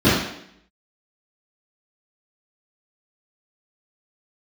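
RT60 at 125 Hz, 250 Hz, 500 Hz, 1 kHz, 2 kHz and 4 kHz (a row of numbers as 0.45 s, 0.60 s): 0.60 s, 0.75 s, 0.75 s, 0.70 s, 0.75 s, 0.70 s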